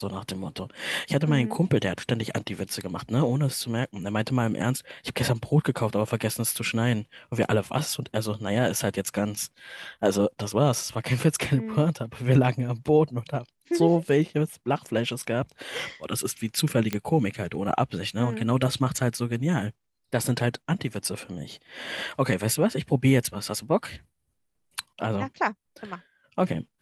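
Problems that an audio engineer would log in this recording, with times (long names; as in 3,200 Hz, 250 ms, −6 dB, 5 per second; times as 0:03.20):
0:16.93: click −12 dBFS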